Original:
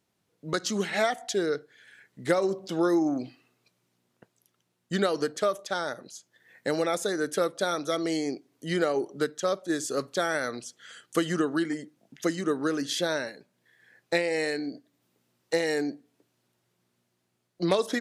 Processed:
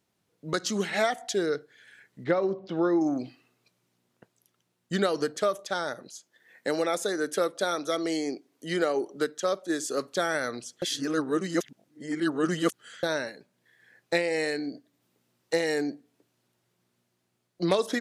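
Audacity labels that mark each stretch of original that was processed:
2.240000	3.010000	high-frequency loss of the air 260 metres
6.110000	10.150000	high-pass filter 200 Hz
10.820000	13.030000	reverse

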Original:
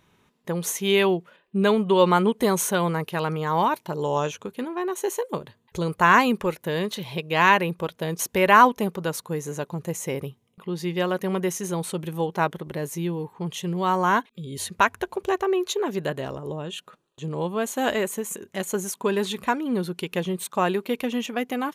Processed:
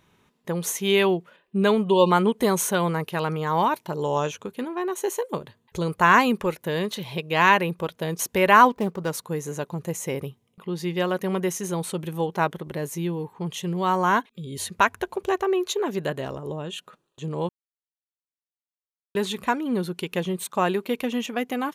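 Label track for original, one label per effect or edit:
1.900000	2.110000	time-frequency box erased 1,100–2,400 Hz
8.700000	9.110000	running median over 15 samples
17.490000	19.150000	silence

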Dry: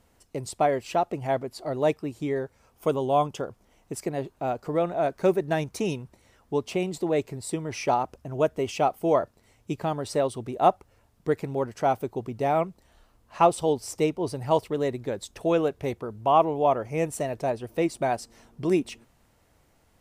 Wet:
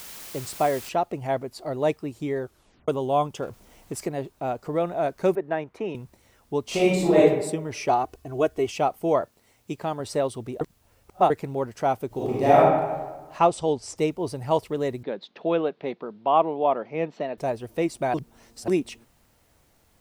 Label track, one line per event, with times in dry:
0.890000	0.890000	noise floor change −41 dB −69 dB
2.420000	2.420000	tape stop 0.46 s
3.420000	4.080000	mu-law and A-law mismatch coded by mu
5.350000	5.950000	three-way crossover with the lows and the highs turned down lows −12 dB, under 270 Hz, highs −24 dB, over 2,600 Hz
6.650000	7.190000	thrown reverb, RT60 0.91 s, DRR −8 dB
7.890000	8.670000	comb filter 2.7 ms
9.210000	10.000000	low-shelf EQ 120 Hz −10 dB
10.610000	11.300000	reverse
12.070000	12.570000	thrown reverb, RT60 1.3 s, DRR −8 dB
13.390000	13.970000	low-pass filter 8,600 Hz 24 dB per octave
15.030000	17.380000	elliptic band-pass filter 180–4,000 Hz
18.140000	18.680000	reverse

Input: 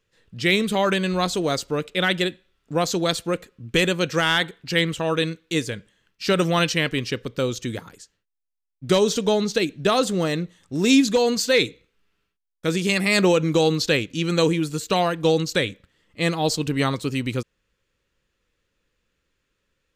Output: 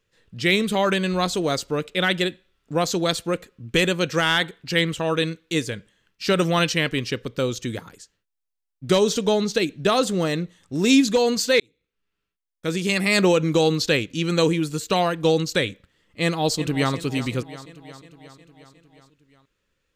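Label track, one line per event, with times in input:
11.600000	13.050000	fade in
16.220000	16.930000	delay throw 360 ms, feedback 65%, level −14 dB

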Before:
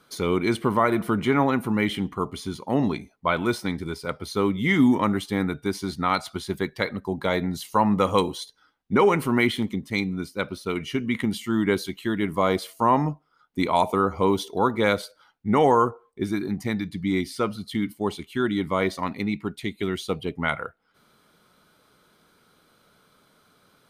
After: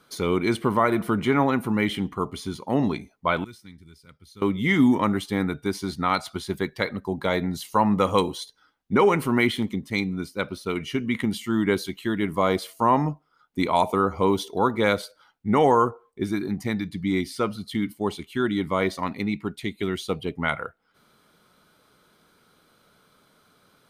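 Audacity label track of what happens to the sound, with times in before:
3.440000	4.420000	guitar amp tone stack bass-middle-treble 6-0-2

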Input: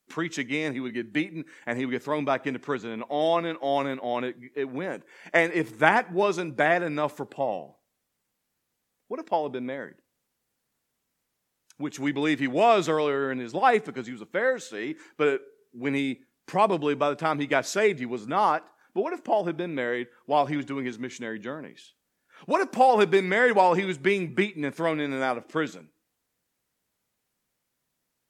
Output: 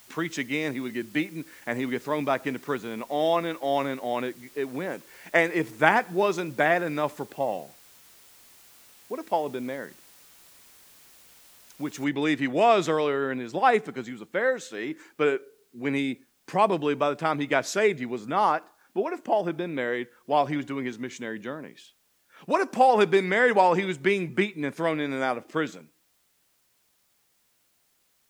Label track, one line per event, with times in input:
12.040000	12.040000	noise floor change −54 dB −69 dB

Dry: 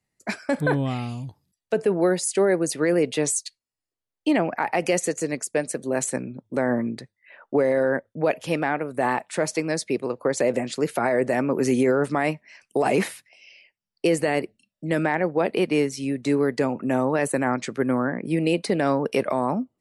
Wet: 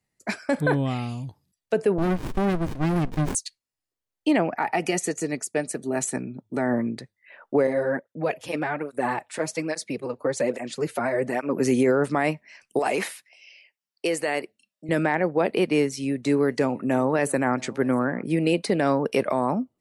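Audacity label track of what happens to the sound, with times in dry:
1.980000	3.350000	windowed peak hold over 65 samples
4.520000	6.740000	notch comb filter 530 Hz
7.670000	11.600000	through-zero flanger with one copy inverted nulls at 1.2 Hz, depth 6.4 ms
12.790000	14.890000	high-pass filter 600 Hz 6 dB per octave
15.810000	18.550000	single-tap delay 670 ms −24 dB

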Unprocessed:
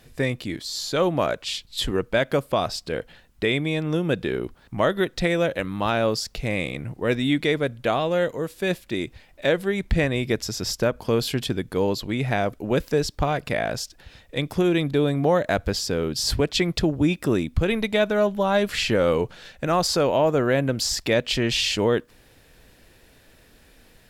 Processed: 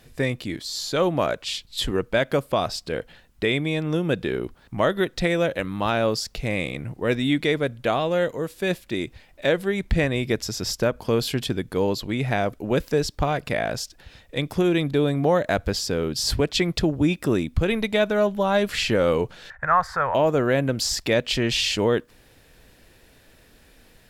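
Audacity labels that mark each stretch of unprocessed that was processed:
19.500000	20.150000	drawn EQ curve 110 Hz 0 dB, 310 Hz −21 dB, 960 Hz +6 dB, 1,800 Hz +11 dB, 2,700 Hz −15 dB, 4,400 Hz −18 dB

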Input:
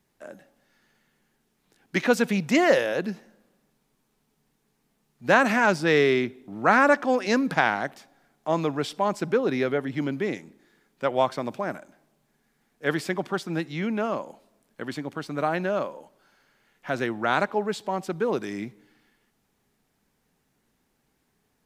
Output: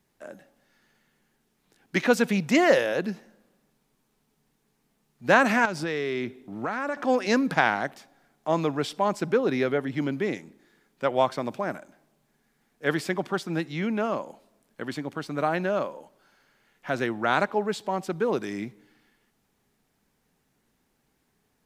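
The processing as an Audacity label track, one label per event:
5.650000	6.970000	downward compressor, threshold −25 dBFS

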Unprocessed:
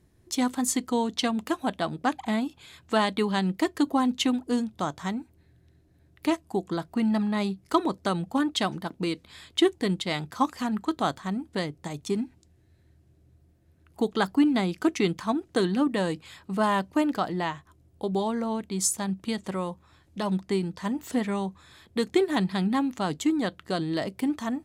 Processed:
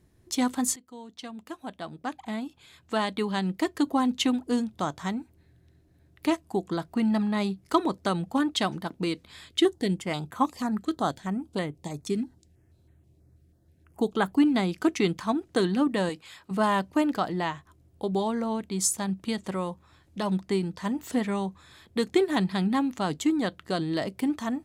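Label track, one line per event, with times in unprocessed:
0.760000	4.250000	fade in, from −23.5 dB
9.490000	14.380000	notch on a step sequencer 6.2 Hz 910–5,000 Hz
16.090000	16.510000	low-shelf EQ 290 Hz −10.5 dB

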